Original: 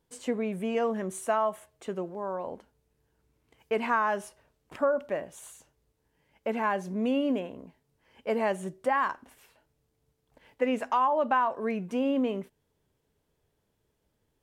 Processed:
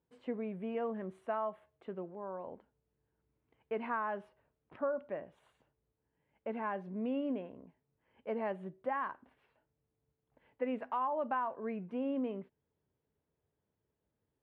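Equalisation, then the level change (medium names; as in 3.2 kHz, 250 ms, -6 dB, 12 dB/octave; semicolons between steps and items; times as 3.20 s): high-pass 64 Hz; distance through air 440 m; -7.5 dB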